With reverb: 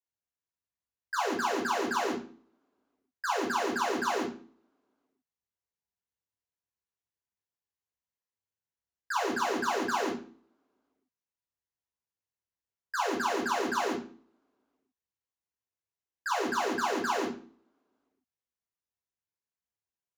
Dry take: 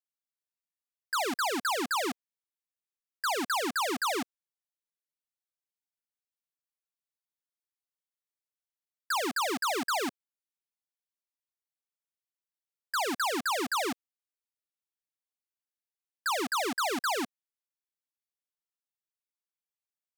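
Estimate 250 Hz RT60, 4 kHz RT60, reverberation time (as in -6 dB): 0.55 s, 0.40 s, 0.45 s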